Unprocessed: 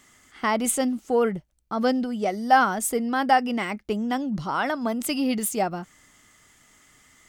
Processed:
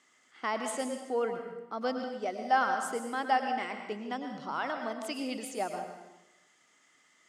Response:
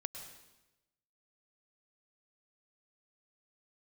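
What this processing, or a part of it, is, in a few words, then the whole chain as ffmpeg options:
supermarket ceiling speaker: -filter_complex "[0:a]highpass=310,lowpass=6.8k[a];[1:a]atrim=start_sample=2205[b];[a][b]afir=irnorm=-1:irlink=0,volume=-6dB"

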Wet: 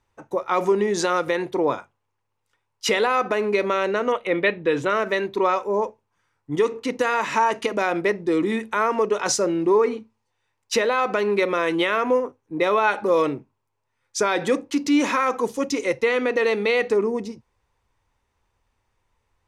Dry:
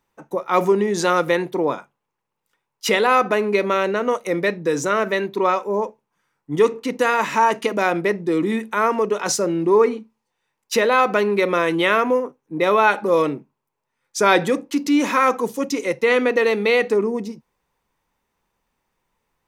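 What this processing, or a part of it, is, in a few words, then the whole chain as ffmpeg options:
car stereo with a boomy subwoofer: -filter_complex "[0:a]lowshelf=f=130:t=q:w=3:g=6.5,alimiter=limit=-10dB:level=0:latency=1:release=115,lowpass=9.2k,asettb=1/sr,asplit=3[a][b][c];[a]atrim=end=4.124[d];[b]atrim=start=4.12:end=4.9,asetpts=PTS-STARTPTS,afade=t=in:d=0.004:c=qsin,afade=t=out:st=0.776:d=0.004:c=qsin,highshelf=f=4.3k:t=q:w=3:g=-10.5[e];[c]atrim=start=4.896[f];[d][e]acrossfade=d=0.004:c1=hsin:c2=qsin[g];[g][f]acrossfade=d=0.004:c1=qsin:c2=hsin"

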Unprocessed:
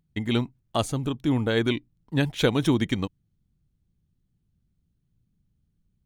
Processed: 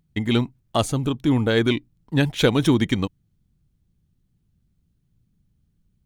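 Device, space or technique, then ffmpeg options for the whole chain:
parallel distortion: -filter_complex "[0:a]asplit=2[a][b];[b]asoftclip=type=hard:threshold=-22dB,volume=-13.5dB[c];[a][c]amix=inputs=2:normalize=0,volume=3dB"

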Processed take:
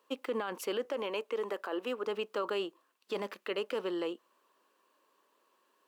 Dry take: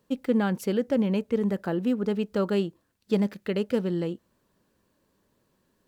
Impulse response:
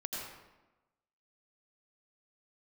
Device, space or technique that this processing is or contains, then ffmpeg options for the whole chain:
laptop speaker: -filter_complex "[0:a]highpass=f=340:w=0.5412,highpass=f=340:w=1.3066,equalizer=f=1.1k:t=o:w=0.57:g=11,equalizer=f=2.8k:t=o:w=0.52:g=7,alimiter=limit=-23dB:level=0:latency=1:release=28,asettb=1/sr,asplit=3[a][b][c];[a]atrim=end=0.854[d];[b]atrim=start=0.85:end=2.07,asetpts=PTS-STARTPTS,afade=t=in:d=0.004:c=qsin,afade=t=out:st=1.216:d=0.004:c=qsin,highpass=290[e];[c]atrim=start=2.066[f];[d][e]acrossfade=d=0.004:c1=hsin:c2=qsin[g];[g][f]acrossfade=d=0.004:c1=qsin:c2=hsin,volume=-2.5dB"

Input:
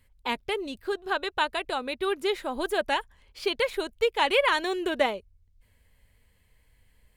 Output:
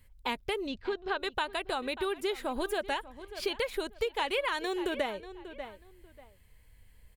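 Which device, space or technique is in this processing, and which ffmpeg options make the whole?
ASMR close-microphone chain: -filter_complex "[0:a]asettb=1/sr,asplit=3[a][b][c];[a]atrim=end=0.674[d];[b]atrim=start=0.67:end=1.2,asetpts=PTS-STARTPTS,afade=t=in:d=0.004:c=qsin,afade=t=out:st=0.526:d=0.004:c=qsin,lowpass=f=5.3k:w=0.5412,lowpass=f=5.3k:w=1.3066[e];[c]atrim=start=1.196[f];[d][e]acrossfade=d=0.004:c1=hsin:c2=qsin[g];[g][f]acrossfade=d=0.004:c1=qsin:c2=hsin,lowshelf=f=110:g=5,asplit=2[h][i];[i]adelay=589,lowpass=f=3.4k:p=1,volume=-17.5dB,asplit=2[j][k];[k]adelay=589,lowpass=f=3.4k:p=1,volume=0.22[l];[h][j][l]amix=inputs=3:normalize=0,acompressor=threshold=-29dB:ratio=4,highshelf=f=11k:g=5.5"

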